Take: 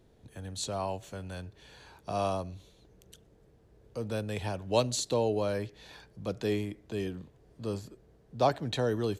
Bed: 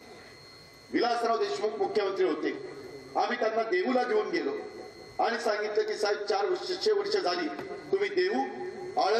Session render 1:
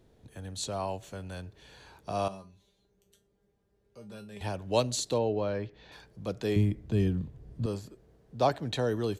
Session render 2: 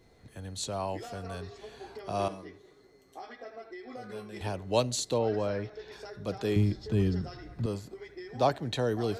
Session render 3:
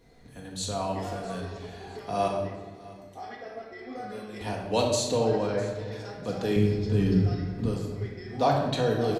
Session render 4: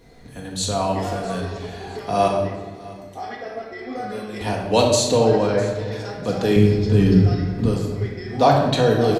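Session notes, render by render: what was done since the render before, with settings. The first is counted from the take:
2.28–4.41 resonator 200 Hz, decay 0.22 s, mix 90%; 5.18–5.92 air absorption 180 m; 6.56–7.66 tone controls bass +14 dB, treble -2 dB
add bed -17 dB
feedback echo 0.654 s, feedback 37%, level -20 dB; shoebox room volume 880 m³, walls mixed, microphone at 1.8 m
gain +8.5 dB

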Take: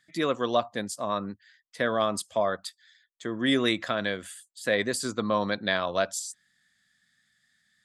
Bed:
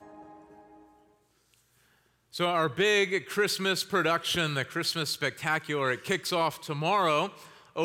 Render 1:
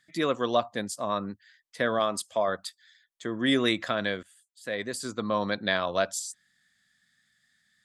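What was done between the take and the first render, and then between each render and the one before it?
1.99–2.48 low shelf 180 Hz -9 dB; 4.23–5.61 fade in, from -19 dB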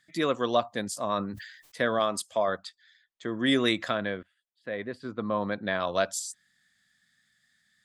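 0.83–1.85 sustainer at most 67 dB/s; 2.58–3.28 air absorption 96 m; 3.97–5.8 air absorption 400 m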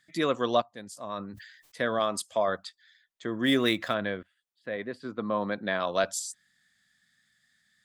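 0.62–2.26 fade in, from -14.5 dB; 3.42–3.94 median filter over 5 samples; 4.76–6.04 HPF 130 Hz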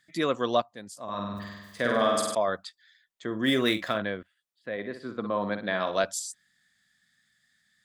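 1.03–2.35 flutter echo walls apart 8.5 m, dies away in 1.2 s; 3.26–4.02 doubler 46 ms -10.5 dB; 4.72–6.02 flutter echo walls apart 10.1 m, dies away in 0.39 s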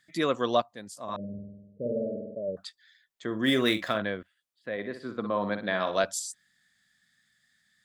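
1.16–2.57 rippled Chebyshev low-pass 610 Hz, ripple 6 dB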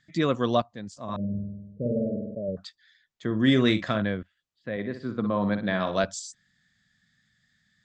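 steep low-pass 7500 Hz 48 dB/oct; tone controls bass +12 dB, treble -1 dB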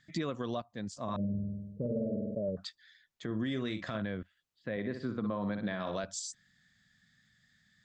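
compressor 6:1, threshold -30 dBFS, peak gain reduction 13.5 dB; limiter -25 dBFS, peak gain reduction 7.5 dB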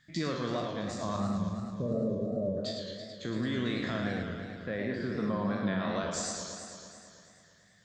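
spectral trails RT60 0.61 s; warbling echo 0.11 s, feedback 76%, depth 186 cents, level -6 dB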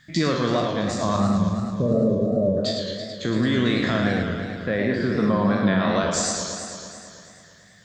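gain +11 dB

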